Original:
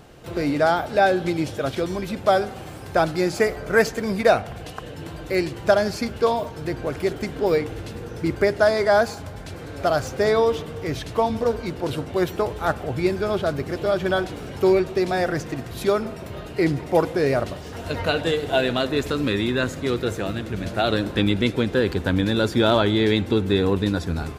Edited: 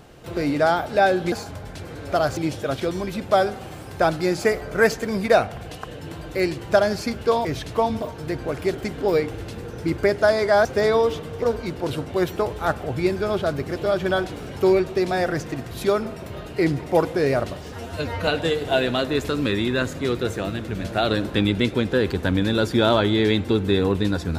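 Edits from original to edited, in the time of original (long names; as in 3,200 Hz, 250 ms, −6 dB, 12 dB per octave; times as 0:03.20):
0:09.03–0:10.08: move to 0:01.32
0:10.85–0:11.42: move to 0:06.40
0:17.72–0:18.09: time-stretch 1.5×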